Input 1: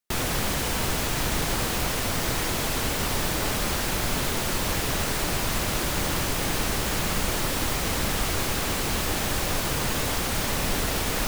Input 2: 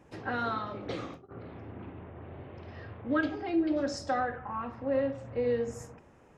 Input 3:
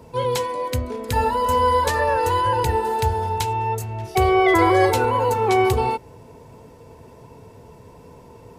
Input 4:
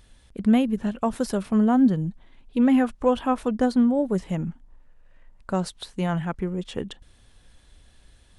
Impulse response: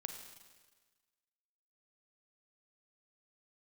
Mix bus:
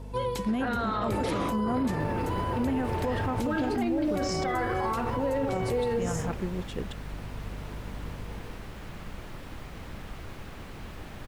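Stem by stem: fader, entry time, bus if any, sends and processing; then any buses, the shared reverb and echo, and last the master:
-16.5 dB, 1.90 s, no send, tone controls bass +5 dB, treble -13 dB
+3.0 dB, 0.35 s, no send, AGC gain up to 11.5 dB; limiter -22 dBFS, peak gain reduction 16.5 dB
-5.0 dB, 0.00 s, send -16.5 dB, auto duck -10 dB, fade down 0.20 s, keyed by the fourth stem
-5.5 dB, 0.00 s, no send, hum 50 Hz, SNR 10 dB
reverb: on, RT60 1.4 s, pre-delay 35 ms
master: limiter -20.5 dBFS, peak gain reduction 8 dB

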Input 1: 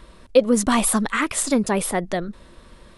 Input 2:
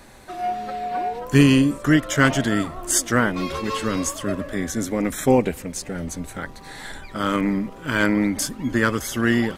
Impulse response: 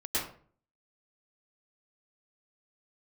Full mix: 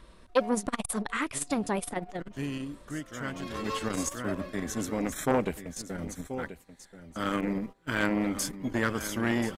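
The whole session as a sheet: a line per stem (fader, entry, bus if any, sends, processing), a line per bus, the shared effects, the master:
-7.0 dB, 0.00 s, no send, no echo send, dry
-6.0 dB, 0.00 s, no send, echo send -13.5 dB, gate -30 dBFS, range -22 dB; auto duck -24 dB, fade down 1.45 s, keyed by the first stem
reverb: off
echo: echo 1.032 s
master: core saturation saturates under 850 Hz

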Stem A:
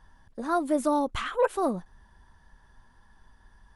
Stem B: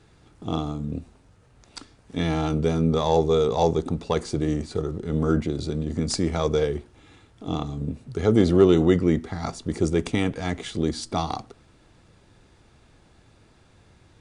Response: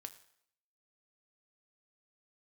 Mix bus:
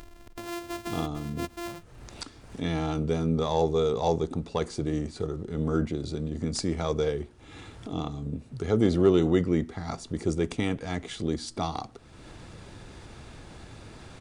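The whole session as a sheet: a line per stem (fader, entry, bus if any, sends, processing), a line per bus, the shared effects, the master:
-12.0 dB, 0.00 s, no send, sample sorter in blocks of 128 samples
-4.5 dB, 0.45 s, no send, dry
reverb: off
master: upward compressor, threshold -31 dBFS

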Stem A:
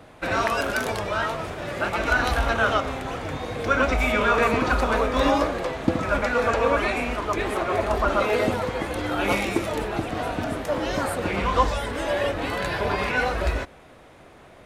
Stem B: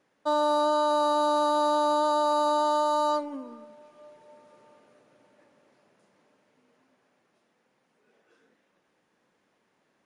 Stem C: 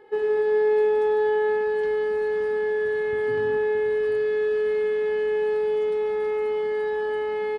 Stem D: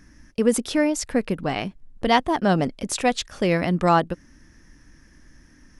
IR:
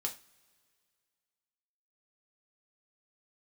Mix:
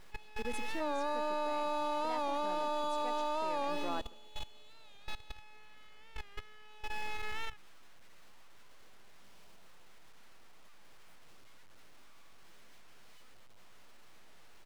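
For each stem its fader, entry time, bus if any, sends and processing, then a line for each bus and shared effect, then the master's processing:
-18.5 dB, 0.00 s, no send, echo send -16.5 dB, infinite clipping; high shelf 2700 Hz -8 dB; full-wave rectifier
-4.0 dB, 0.55 s, no send, echo send -18.5 dB, dry
+1.5 dB, 0.00 s, send -22 dB, no echo send, elliptic band-pass 820–2700 Hz, stop band 40 dB; compressor 8:1, threshold -35 dBFS, peak gain reduction 6.5 dB; full-wave rectifier
-18.5 dB, 0.00 s, no send, echo send -14 dB, HPF 240 Hz 24 dB/oct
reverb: on, pre-delay 3 ms
echo: feedback echo 0.15 s, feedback 41%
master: high shelf 5800 Hz -5.5 dB; level quantiser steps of 17 dB; record warp 45 rpm, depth 100 cents

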